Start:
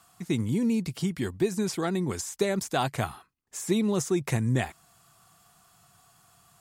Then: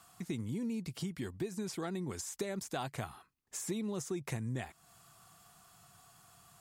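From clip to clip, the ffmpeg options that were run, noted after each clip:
ffmpeg -i in.wav -af "acompressor=threshold=-39dB:ratio=2.5,volume=-1dB" out.wav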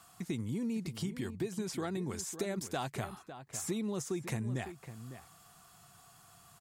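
ffmpeg -i in.wav -filter_complex "[0:a]asplit=2[link_01][link_02];[link_02]adelay=553.9,volume=-11dB,highshelf=frequency=4000:gain=-12.5[link_03];[link_01][link_03]amix=inputs=2:normalize=0,volume=1.5dB" out.wav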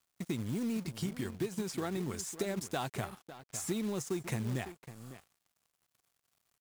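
ffmpeg -i in.wav -af "aeval=exprs='sgn(val(0))*max(abs(val(0))-0.00224,0)':channel_layout=same,acrusher=bits=4:mode=log:mix=0:aa=0.000001,volume=1.5dB" out.wav

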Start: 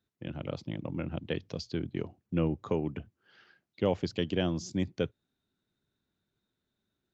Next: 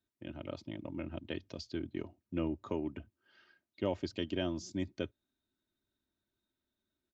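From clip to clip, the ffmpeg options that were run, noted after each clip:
ffmpeg -i in.wav -af "aecho=1:1:3.2:0.57,volume=-6dB" out.wav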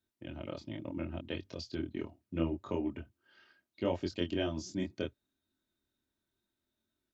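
ffmpeg -i in.wav -af "flanger=delay=22.5:depth=4.1:speed=0.73,volume=4.5dB" out.wav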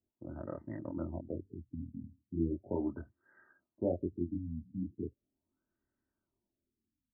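ffmpeg -i in.wav -af "afftfilt=real='re*lt(b*sr/1024,260*pow(2100/260,0.5+0.5*sin(2*PI*0.38*pts/sr)))':imag='im*lt(b*sr/1024,260*pow(2100/260,0.5+0.5*sin(2*PI*0.38*pts/sr)))':win_size=1024:overlap=0.75" out.wav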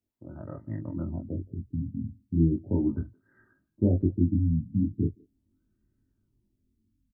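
ffmpeg -i in.wav -filter_complex "[0:a]asplit=2[link_01][link_02];[link_02]adelay=19,volume=-6dB[link_03];[link_01][link_03]amix=inputs=2:normalize=0,asubboost=boost=11:cutoff=220,asplit=2[link_04][link_05];[link_05]adelay=170,highpass=300,lowpass=3400,asoftclip=type=hard:threshold=-19.5dB,volume=-25dB[link_06];[link_04][link_06]amix=inputs=2:normalize=0" out.wav

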